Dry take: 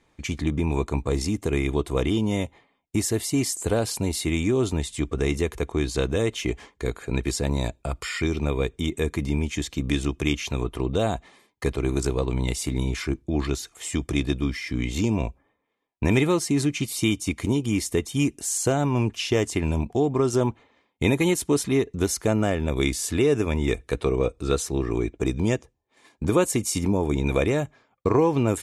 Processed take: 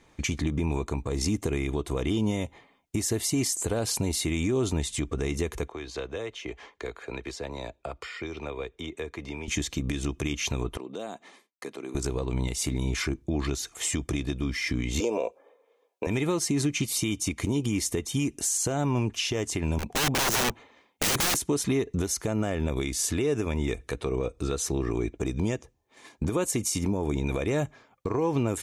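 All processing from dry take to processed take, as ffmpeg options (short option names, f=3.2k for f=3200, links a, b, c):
-filter_complex "[0:a]asettb=1/sr,asplit=3[a][b][c];[a]atrim=end=5.684[d];[b]atrim=start=5.68:end=9.48,asetpts=PTS-STARTPTS,afade=t=in:d=0.004:c=qsin,afade=t=out:st=3.796:d=0.004:c=qsin,acrossover=split=400 5100:gain=0.158 1 0.178[e][f][g];[e][f][g]amix=inputs=3:normalize=0,acrossover=split=89|590[h][i][j];[h]acompressor=threshold=-50dB:ratio=4[k];[i]acompressor=threshold=-41dB:ratio=4[l];[j]acompressor=threshold=-46dB:ratio=4[m];[k][l][m]amix=inputs=3:normalize=0[n];[c]atrim=start=9.476[o];[d][n]acrossfade=d=0.004:c1=hsin:c2=qsin[p];[p][o]acrossfade=d=0.004:c1=qsin:c2=hsin,asettb=1/sr,asplit=3[q][r][s];[q]atrim=end=10.774[t];[r]atrim=start=10.77:end=11.95,asetpts=PTS-STARTPTS,afade=t=in:d=0.004:c=qsin,afade=t=out:st=1.176:d=0.004:c=qsin,agate=range=-33dB:threshold=-50dB:ratio=3:release=100:detection=peak,highpass=f=200:w=0.5412,highpass=f=200:w=1.3066,acompressor=threshold=-52dB:ratio=2:attack=3.2:release=140:knee=1:detection=peak[u];[s]atrim=start=11.946[v];[t][u]acrossfade=d=0.004:c1=hsin:c2=qsin[w];[w][v]acrossfade=d=0.004:c1=qsin:c2=hsin,asettb=1/sr,asplit=3[x][y][z];[x]atrim=end=15.004[aa];[y]atrim=start=15:end=16.07,asetpts=PTS-STARTPTS,afade=t=in:d=0.004:c=qsin,afade=t=out:st=1.066:d=0.004:c=qsin,highpass=f=490:t=q:w=6,bandreject=f=1.9k:w=7.6[ab];[z]atrim=start=16.066[ac];[aa][ab]acrossfade=d=0.004:c1=hsin:c2=qsin[ad];[ad][ac]acrossfade=d=0.004:c1=qsin:c2=hsin,asettb=1/sr,asplit=3[ae][af][ag];[ae]atrim=end=19.784[ah];[af]atrim=start=19.78:end=21.36,asetpts=PTS-STARTPTS,afade=t=in:d=0.004:c=qsin,afade=t=out:st=1.576:d=0.004:c=qsin,lowshelf=f=230:g=-5,aeval=exprs='(mod(17.8*val(0)+1,2)-1)/17.8':c=same[ai];[ag]atrim=start=21.356[aj];[ah][ai]acrossfade=d=0.004:c1=hsin:c2=qsin[ak];[ak][aj]acrossfade=d=0.004:c1=qsin:c2=hsin,equalizer=f=6.2k:w=6:g=4,acompressor=threshold=-22dB:ratio=6,alimiter=limit=-22.5dB:level=0:latency=1:release=281,volume=5dB"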